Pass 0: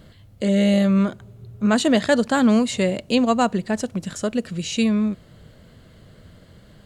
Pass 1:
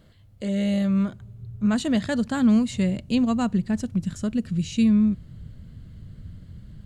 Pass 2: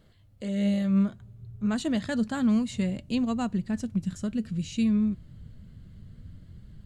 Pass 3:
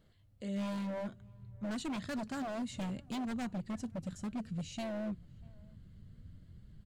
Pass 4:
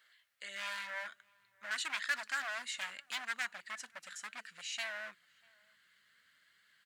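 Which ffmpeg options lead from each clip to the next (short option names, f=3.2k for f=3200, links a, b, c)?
-af "asubboost=boost=8.5:cutoff=190,volume=-8dB"
-af "flanger=delay=2.2:depth=3.5:regen=76:speed=0.6:shape=triangular"
-filter_complex "[0:a]aeval=exprs='0.0562*(abs(mod(val(0)/0.0562+3,4)-2)-1)':c=same,asplit=2[a][b];[b]adelay=641.4,volume=-27dB,highshelf=f=4k:g=-14.4[c];[a][c]amix=inputs=2:normalize=0,volume=-7.5dB"
-af "highpass=f=1.7k:t=q:w=2.6,volume=6dB"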